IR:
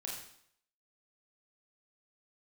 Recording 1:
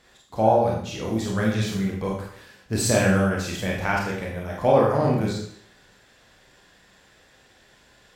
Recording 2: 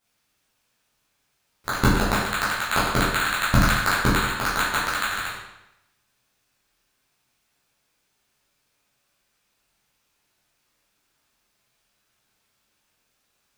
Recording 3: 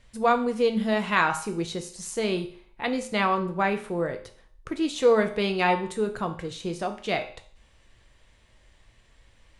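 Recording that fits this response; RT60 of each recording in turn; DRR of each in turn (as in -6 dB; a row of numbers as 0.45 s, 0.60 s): 1; 0.65 s, 0.90 s, 0.50 s; -3.0 dB, -10.0 dB, 5.5 dB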